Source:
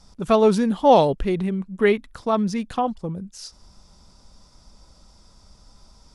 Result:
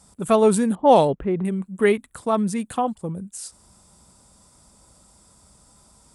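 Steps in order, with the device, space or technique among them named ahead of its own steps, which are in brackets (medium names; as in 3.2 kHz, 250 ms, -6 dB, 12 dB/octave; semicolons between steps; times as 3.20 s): 0.75–1.45 s: level-controlled noise filter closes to 540 Hz, open at -8.5 dBFS; budget condenser microphone (high-pass 75 Hz 12 dB/octave; resonant high shelf 6.8 kHz +8 dB, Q 3)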